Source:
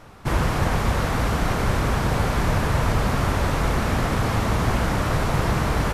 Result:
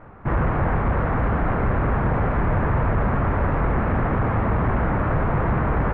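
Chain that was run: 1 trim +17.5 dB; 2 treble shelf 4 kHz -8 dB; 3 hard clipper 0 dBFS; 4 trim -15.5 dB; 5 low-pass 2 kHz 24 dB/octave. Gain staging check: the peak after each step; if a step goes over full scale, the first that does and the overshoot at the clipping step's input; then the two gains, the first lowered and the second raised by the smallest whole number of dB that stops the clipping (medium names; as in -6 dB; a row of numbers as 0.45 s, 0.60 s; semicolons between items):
+10.0 dBFS, +10.0 dBFS, 0.0 dBFS, -15.5 dBFS, -14.5 dBFS; step 1, 10.0 dB; step 1 +7.5 dB, step 4 -5.5 dB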